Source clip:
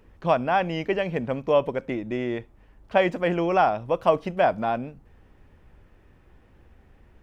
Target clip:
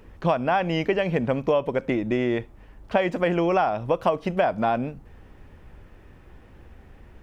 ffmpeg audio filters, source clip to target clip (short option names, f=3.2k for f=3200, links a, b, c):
-af "acompressor=threshold=-25dB:ratio=6,volume=6.5dB"